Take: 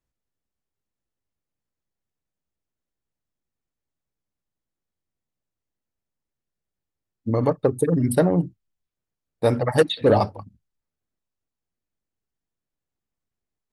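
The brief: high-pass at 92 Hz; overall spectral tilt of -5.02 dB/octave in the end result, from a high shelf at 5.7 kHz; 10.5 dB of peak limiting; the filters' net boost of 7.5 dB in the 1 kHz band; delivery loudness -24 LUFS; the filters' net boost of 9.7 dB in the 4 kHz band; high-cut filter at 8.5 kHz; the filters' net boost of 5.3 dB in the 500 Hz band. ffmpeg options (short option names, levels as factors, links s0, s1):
-af "highpass=92,lowpass=8500,equalizer=f=500:t=o:g=4,equalizer=f=1000:t=o:g=8,equalizer=f=4000:t=o:g=8.5,highshelf=f=5700:g=5.5,volume=0.75,alimiter=limit=0.251:level=0:latency=1"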